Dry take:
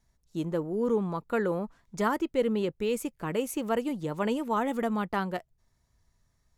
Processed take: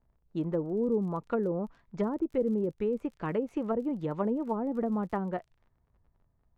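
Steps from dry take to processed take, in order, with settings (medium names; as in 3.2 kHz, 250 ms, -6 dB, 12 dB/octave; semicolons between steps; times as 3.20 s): low-pass that closes with the level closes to 500 Hz, closed at -24 dBFS; crackle 43 per s -47 dBFS; level-controlled noise filter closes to 850 Hz, open at -29.5 dBFS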